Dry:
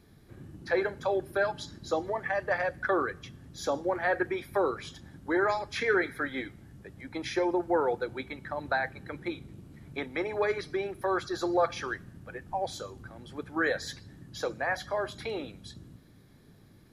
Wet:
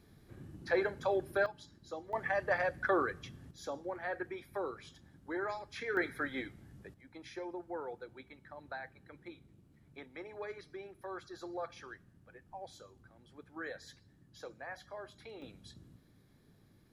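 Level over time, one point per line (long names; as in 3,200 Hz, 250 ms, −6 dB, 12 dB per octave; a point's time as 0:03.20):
−3.5 dB
from 0:01.46 −14 dB
from 0:02.13 −3 dB
from 0:03.51 −11 dB
from 0:05.97 −4.5 dB
from 0:06.94 −15 dB
from 0:15.42 −8 dB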